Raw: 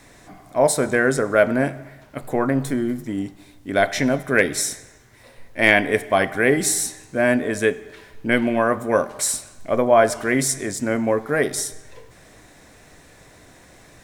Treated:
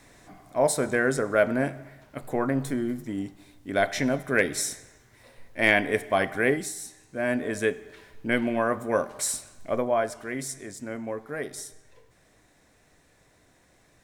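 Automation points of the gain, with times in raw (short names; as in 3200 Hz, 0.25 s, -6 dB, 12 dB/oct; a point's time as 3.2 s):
6.49 s -5.5 dB
6.73 s -16 dB
7.47 s -6 dB
9.72 s -6 dB
10.12 s -13 dB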